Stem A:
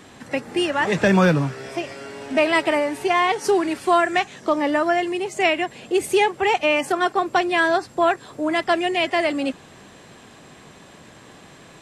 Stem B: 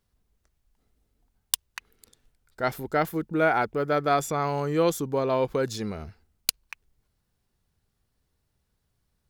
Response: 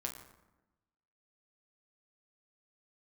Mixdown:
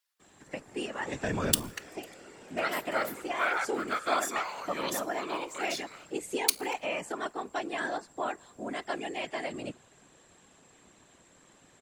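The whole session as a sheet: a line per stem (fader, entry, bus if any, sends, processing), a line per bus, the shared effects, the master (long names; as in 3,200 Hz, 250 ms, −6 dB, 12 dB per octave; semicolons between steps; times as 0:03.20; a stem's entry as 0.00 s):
−15.5 dB, 0.20 s, send −21.5 dB, high-pass filter 120 Hz; parametric band 7,400 Hz +10.5 dB 0.27 octaves
−3.0 dB, 0.00 s, send −6.5 dB, high-pass filter 1,400 Hz 12 dB per octave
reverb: on, RT60 1.0 s, pre-delay 7 ms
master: random phases in short frames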